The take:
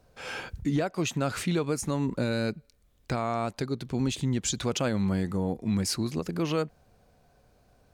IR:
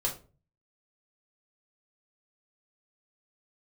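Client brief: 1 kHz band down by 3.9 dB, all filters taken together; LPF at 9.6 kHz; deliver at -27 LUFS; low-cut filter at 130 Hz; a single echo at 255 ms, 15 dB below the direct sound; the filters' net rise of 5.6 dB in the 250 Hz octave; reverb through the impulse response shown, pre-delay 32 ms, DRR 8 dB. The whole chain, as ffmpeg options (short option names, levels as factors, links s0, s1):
-filter_complex "[0:a]highpass=130,lowpass=9600,equalizer=f=250:t=o:g=8,equalizer=f=1000:t=o:g=-6.5,aecho=1:1:255:0.178,asplit=2[s0][s1];[1:a]atrim=start_sample=2205,adelay=32[s2];[s1][s2]afir=irnorm=-1:irlink=0,volume=0.224[s3];[s0][s3]amix=inputs=2:normalize=0,volume=0.841"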